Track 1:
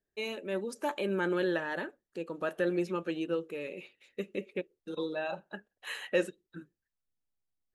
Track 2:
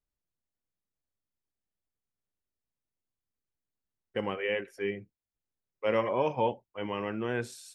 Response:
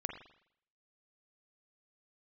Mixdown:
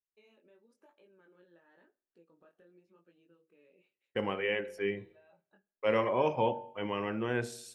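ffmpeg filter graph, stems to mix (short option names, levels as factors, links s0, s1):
-filter_complex "[0:a]highshelf=f=3900:g=-8.5,acompressor=threshold=0.01:ratio=5,flanger=delay=17:depth=6.6:speed=0.95,volume=0.112,asplit=2[s0][s1];[s1]volume=0.119[s2];[1:a]agate=range=0.0224:threshold=0.00251:ratio=3:detection=peak,bandreject=f=47.23:t=h:w=4,bandreject=f=94.46:t=h:w=4,bandreject=f=141.69:t=h:w=4,bandreject=f=188.92:t=h:w=4,bandreject=f=236.15:t=h:w=4,bandreject=f=283.38:t=h:w=4,bandreject=f=330.61:t=h:w=4,bandreject=f=377.84:t=h:w=4,bandreject=f=425.07:t=h:w=4,bandreject=f=472.3:t=h:w=4,bandreject=f=519.53:t=h:w=4,bandreject=f=566.76:t=h:w=4,bandreject=f=613.99:t=h:w=4,bandreject=f=661.22:t=h:w=4,bandreject=f=708.45:t=h:w=4,bandreject=f=755.68:t=h:w=4,bandreject=f=802.91:t=h:w=4,bandreject=f=850.14:t=h:w=4,bandreject=f=897.37:t=h:w=4,volume=0.841,asplit=2[s3][s4];[s4]volume=0.224[s5];[2:a]atrim=start_sample=2205[s6];[s2][s5]amix=inputs=2:normalize=0[s7];[s7][s6]afir=irnorm=-1:irlink=0[s8];[s0][s3][s8]amix=inputs=3:normalize=0"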